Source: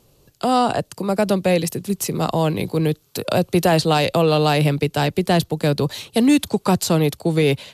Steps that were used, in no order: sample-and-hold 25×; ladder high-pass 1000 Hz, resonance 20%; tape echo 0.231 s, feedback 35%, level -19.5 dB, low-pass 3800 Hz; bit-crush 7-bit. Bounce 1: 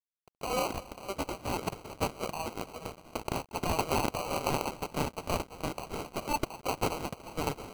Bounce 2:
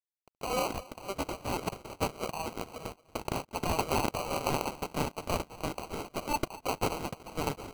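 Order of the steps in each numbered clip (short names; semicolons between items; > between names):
tape echo > bit-crush > ladder high-pass > sample-and-hold; bit-crush > ladder high-pass > tape echo > sample-and-hold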